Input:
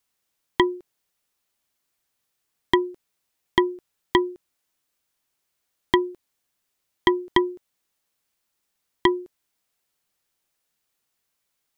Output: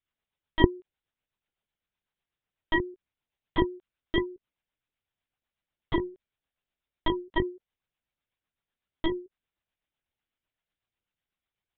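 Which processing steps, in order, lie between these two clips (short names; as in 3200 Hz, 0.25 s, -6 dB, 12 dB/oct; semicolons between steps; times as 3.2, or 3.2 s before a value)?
rotary speaker horn 8 Hz; LPC vocoder at 8 kHz pitch kept; gain -4.5 dB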